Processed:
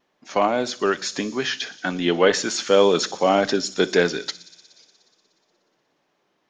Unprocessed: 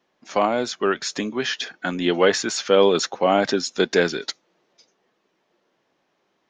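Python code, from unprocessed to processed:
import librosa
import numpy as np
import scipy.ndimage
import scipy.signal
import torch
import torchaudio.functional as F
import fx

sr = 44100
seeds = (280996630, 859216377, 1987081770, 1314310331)

p1 = fx.wow_flutter(x, sr, seeds[0], rate_hz=2.1, depth_cents=24.0)
p2 = p1 + fx.echo_wet_highpass(p1, sr, ms=60, feedback_pct=84, hz=4900.0, wet_db=-13.5, dry=0)
y = fx.room_shoebox(p2, sr, seeds[1], volume_m3=700.0, walls='furnished', distance_m=0.38)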